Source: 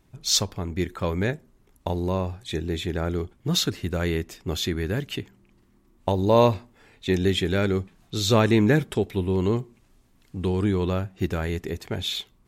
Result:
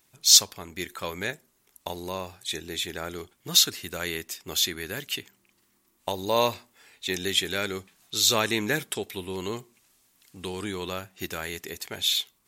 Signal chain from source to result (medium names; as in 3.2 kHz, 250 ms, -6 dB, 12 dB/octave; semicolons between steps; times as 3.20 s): tilt EQ +4 dB/octave; trim -3 dB